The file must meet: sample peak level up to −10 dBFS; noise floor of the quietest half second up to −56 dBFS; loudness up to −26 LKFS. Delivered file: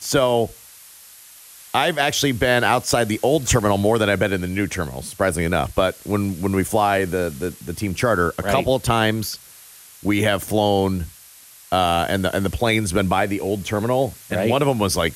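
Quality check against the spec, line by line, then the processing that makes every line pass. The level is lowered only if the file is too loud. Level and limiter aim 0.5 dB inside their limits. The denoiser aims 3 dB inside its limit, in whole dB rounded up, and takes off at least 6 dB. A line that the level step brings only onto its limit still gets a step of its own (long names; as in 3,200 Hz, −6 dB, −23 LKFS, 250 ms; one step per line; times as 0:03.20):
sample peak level −5.5 dBFS: out of spec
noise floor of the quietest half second −46 dBFS: out of spec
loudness −20.5 LKFS: out of spec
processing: broadband denoise 7 dB, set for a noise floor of −46 dBFS
level −6 dB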